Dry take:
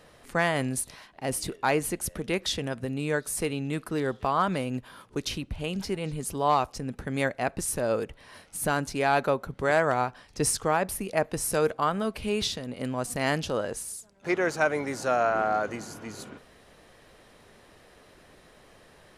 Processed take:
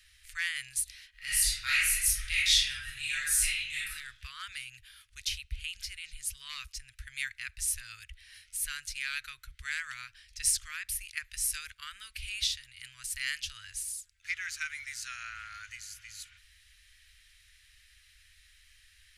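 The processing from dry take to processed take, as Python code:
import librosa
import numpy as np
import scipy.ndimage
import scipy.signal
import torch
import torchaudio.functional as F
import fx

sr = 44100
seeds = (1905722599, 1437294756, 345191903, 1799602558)

y = fx.reverb_throw(x, sr, start_s=1.1, length_s=2.79, rt60_s=0.8, drr_db=-8.5)
y = scipy.signal.sosfilt(scipy.signal.cheby2(4, 50, [160.0, 870.0], 'bandstop', fs=sr, output='sos'), y)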